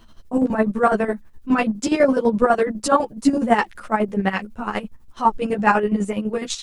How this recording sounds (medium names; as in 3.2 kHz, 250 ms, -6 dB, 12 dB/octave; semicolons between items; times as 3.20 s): a quantiser's noise floor 12-bit, dither triangular; chopped level 12 Hz, depth 65%, duty 40%; a shimmering, thickened sound